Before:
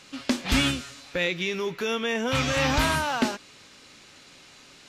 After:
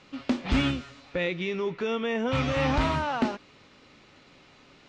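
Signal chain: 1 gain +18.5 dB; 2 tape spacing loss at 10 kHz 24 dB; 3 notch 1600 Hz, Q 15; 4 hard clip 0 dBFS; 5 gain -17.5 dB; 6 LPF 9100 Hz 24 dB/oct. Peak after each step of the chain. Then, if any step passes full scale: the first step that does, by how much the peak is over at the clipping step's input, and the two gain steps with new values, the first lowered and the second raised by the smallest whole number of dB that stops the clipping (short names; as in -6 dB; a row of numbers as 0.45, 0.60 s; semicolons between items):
+7.5, +5.5, +5.5, 0.0, -17.5, -17.0 dBFS; step 1, 5.5 dB; step 1 +12.5 dB, step 5 -11.5 dB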